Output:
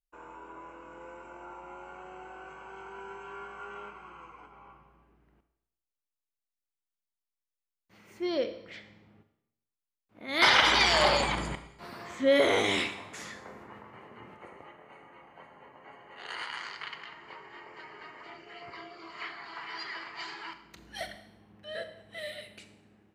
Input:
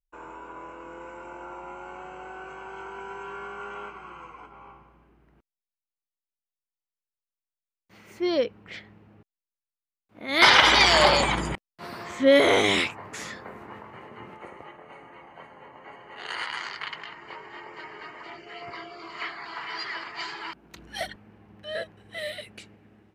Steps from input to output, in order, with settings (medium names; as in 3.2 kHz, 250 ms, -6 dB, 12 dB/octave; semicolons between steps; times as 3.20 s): Schroeder reverb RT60 0.82 s, combs from 27 ms, DRR 9 dB; trim -6 dB